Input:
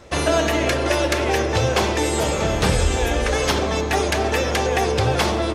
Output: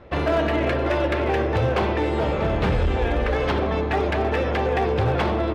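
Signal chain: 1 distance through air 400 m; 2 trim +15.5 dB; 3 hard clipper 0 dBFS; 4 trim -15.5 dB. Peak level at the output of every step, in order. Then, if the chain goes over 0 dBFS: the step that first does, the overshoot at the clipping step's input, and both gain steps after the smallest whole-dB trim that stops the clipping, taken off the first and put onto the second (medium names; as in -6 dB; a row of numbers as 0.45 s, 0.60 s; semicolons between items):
-7.5 dBFS, +8.0 dBFS, 0.0 dBFS, -15.5 dBFS; step 2, 8.0 dB; step 2 +7.5 dB, step 4 -7.5 dB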